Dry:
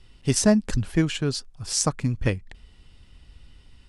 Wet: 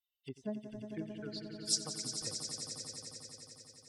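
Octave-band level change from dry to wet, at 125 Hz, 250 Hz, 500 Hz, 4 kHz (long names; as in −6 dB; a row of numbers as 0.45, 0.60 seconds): −23.5, −19.5, −18.0, −7.5 decibels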